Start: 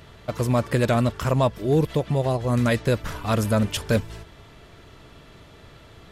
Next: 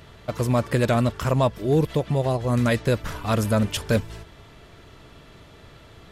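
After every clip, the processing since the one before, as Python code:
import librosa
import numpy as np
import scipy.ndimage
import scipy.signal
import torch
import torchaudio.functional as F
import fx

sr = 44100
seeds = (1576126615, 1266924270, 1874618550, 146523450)

y = x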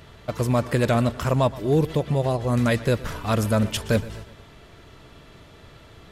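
y = fx.echo_feedback(x, sr, ms=120, feedback_pct=51, wet_db=-19.0)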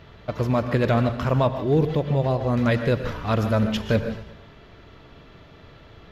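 y = np.convolve(x, np.full(5, 1.0 / 5))[:len(x)]
y = fx.rev_gated(y, sr, seeds[0], gate_ms=180, shape='rising', drr_db=9.5)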